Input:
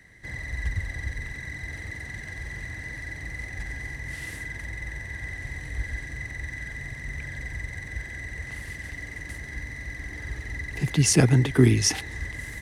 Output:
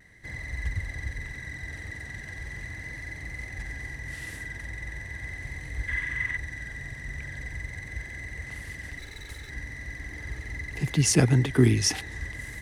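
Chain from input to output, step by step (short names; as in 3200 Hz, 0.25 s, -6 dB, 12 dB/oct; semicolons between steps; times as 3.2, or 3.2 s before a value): 8.99–9.5 minimum comb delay 2.3 ms; vibrato 0.4 Hz 16 cents; 5.88–6.37 spectral gain 930–3700 Hz +10 dB; gain -2 dB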